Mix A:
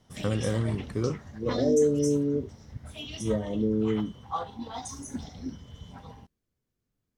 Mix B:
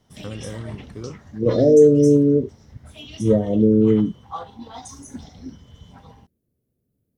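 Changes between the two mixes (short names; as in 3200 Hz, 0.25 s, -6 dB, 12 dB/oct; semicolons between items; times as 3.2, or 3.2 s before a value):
first voice -5.5 dB; second voice +11.0 dB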